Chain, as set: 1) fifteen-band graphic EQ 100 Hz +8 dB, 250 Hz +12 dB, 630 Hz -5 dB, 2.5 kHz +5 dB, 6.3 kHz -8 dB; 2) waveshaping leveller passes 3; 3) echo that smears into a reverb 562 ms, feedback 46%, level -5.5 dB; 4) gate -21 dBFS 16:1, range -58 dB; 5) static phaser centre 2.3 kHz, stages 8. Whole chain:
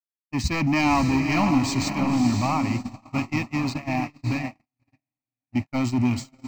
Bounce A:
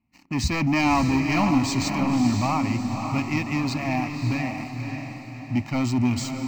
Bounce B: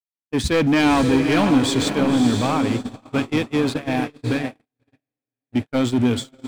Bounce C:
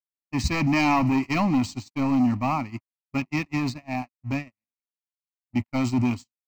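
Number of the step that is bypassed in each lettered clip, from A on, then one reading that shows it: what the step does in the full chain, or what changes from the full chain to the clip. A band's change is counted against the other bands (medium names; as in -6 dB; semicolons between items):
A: 4, momentary loudness spread change +1 LU; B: 5, crest factor change -2.5 dB; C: 3, momentary loudness spread change +1 LU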